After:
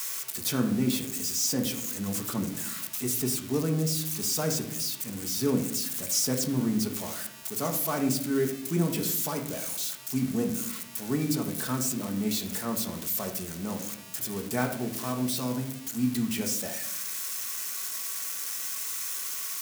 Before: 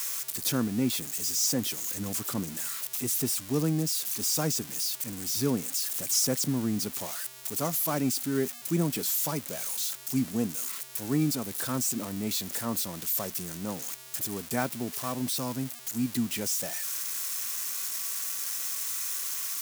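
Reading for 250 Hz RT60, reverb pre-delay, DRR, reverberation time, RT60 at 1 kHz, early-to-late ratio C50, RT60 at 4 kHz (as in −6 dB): 1.1 s, 3 ms, 2.5 dB, 0.70 s, 0.60 s, 8.0 dB, 0.50 s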